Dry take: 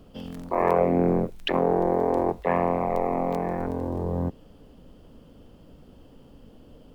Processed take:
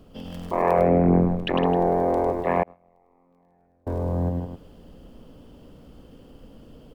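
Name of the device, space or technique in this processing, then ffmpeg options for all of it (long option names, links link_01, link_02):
ducked delay: -filter_complex "[0:a]asplit=3[link_01][link_02][link_03];[link_02]adelay=159,volume=-3dB[link_04];[link_03]apad=whole_len=313317[link_05];[link_04][link_05]sidechaincompress=threshold=-26dB:ratio=8:attack=16:release=624[link_06];[link_01][link_06]amix=inputs=2:normalize=0,asettb=1/sr,asplit=3[link_07][link_08][link_09];[link_07]atrim=end=0.784[link_10];[link_08]atrim=start=0.78:end=1.66,asetpts=PTS-STARTPTS,afade=type=in:duration=0.004:curve=qsin,afade=type=out:start_time=0.876:duration=0.004:curve=qsin,bass=frequency=250:gain=4,treble=frequency=4000:gain=-10[link_11];[link_09]atrim=start=1.656[link_12];[link_10][link_11]acrossfade=duration=0.004:curve1=hsin:curve2=qsin[link_13];[link_13][link_12]acrossfade=duration=0.004:curve1=qsin:curve2=hsin,aecho=1:1:102:0.596,asettb=1/sr,asplit=3[link_14][link_15][link_16];[link_14]atrim=end=2.634[link_17];[link_15]atrim=start=2.63:end=3.87,asetpts=PTS-STARTPTS,afade=type=in:duration=0.004:curve=qsin,afade=type=out:start_time=1.236:duration=0.004:curve=qsin,agate=range=-37dB:threshold=-16dB:ratio=16:detection=peak[link_18];[link_16]atrim=start=3.866[link_19];[link_17][link_18]acrossfade=duration=0.004:curve1=hsin:curve2=qsin[link_20];[link_20][link_19]acrossfade=duration=0.004:curve1=qsin:curve2=hsin"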